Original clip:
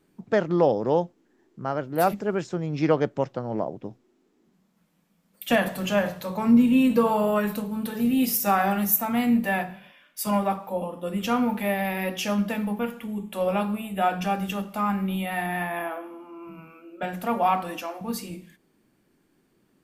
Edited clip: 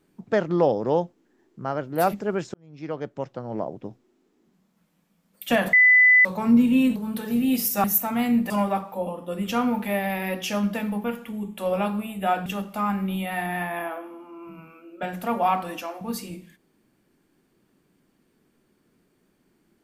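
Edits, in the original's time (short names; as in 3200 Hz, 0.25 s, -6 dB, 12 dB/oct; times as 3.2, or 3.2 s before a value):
2.54–3.79 fade in
5.73–6.25 bleep 2000 Hz -11.5 dBFS
6.96–7.65 cut
8.53–8.82 cut
9.48–10.25 cut
14.21–14.46 cut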